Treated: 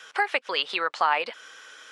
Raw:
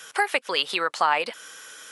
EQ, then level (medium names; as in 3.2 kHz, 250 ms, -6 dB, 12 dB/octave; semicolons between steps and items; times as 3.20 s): high-pass 490 Hz 6 dB/octave; tape spacing loss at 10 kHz 29 dB; treble shelf 2.9 kHz +10.5 dB; +1.5 dB